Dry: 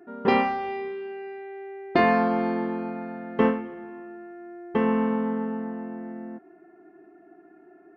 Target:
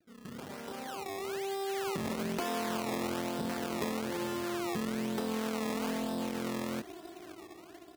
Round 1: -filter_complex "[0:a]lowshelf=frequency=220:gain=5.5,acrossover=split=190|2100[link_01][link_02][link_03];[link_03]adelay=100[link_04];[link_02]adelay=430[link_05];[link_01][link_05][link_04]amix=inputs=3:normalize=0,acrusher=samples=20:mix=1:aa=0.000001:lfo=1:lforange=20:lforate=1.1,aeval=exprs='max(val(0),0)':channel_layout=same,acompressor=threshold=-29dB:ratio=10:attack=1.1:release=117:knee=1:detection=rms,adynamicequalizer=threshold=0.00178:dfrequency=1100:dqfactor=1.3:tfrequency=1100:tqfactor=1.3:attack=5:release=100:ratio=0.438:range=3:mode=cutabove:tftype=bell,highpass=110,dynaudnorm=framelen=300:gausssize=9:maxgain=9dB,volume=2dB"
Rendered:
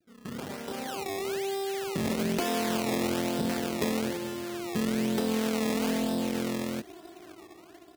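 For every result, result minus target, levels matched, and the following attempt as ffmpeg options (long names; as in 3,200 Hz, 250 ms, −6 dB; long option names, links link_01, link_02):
downward compressor: peak gain reduction −7 dB; 1,000 Hz band −3.0 dB
-filter_complex "[0:a]lowshelf=frequency=220:gain=5.5,acrossover=split=190|2100[link_01][link_02][link_03];[link_03]adelay=100[link_04];[link_02]adelay=430[link_05];[link_01][link_05][link_04]amix=inputs=3:normalize=0,acrusher=samples=20:mix=1:aa=0.000001:lfo=1:lforange=20:lforate=1.1,aeval=exprs='max(val(0),0)':channel_layout=same,acompressor=threshold=-36.5dB:ratio=10:attack=1.1:release=117:knee=1:detection=rms,adynamicequalizer=threshold=0.00178:dfrequency=1100:dqfactor=1.3:tfrequency=1100:tqfactor=1.3:attack=5:release=100:ratio=0.438:range=3:mode=cutabove:tftype=bell,highpass=110,dynaudnorm=framelen=300:gausssize=9:maxgain=9dB,volume=2dB"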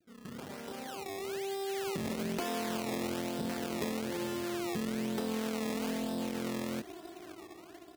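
1,000 Hz band −2.5 dB
-filter_complex "[0:a]lowshelf=frequency=220:gain=5.5,acrossover=split=190|2100[link_01][link_02][link_03];[link_03]adelay=100[link_04];[link_02]adelay=430[link_05];[link_01][link_05][link_04]amix=inputs=3:normalize=0,acrusher=samples=20:mix=1:aa=0.000001:lfo=1:lforange=20:lforate=1.1,aeval=exprs='max(val(0),0)':channel_layout=same,acompressor=threshold=-36.5dB:ratio=10:attack=1.1:release=117:knee=1:detection=rms,highpass=110,dynaudnorm=framelen=300:gausssize=9:maxgain=9dB,volume=2dB"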